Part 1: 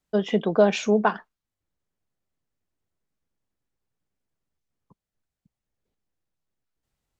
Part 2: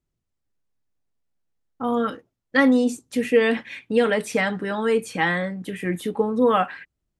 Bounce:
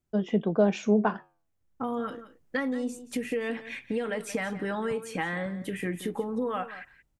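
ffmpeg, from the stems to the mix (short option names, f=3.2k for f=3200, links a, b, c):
-filter_complex "[0:a]lowshelf=f=330:g=10,dynaudnorm=f=560:g=3:m=16dB,flanger=delay=2.7:depth=9.4:regen=-84:speed=0.31:shape=triangular,volume=-4.5dB[a];[1:a]acompressor=threshold=-27dB:ratio=6,volume=-1dB,asplit=2[b][c];[c]volume=-14.5dB,aecho=0:1:176:1[d];[a][b][d]amix=inputs=3:normalize=0,equalizer=f=4k:w=1.8:g=-4"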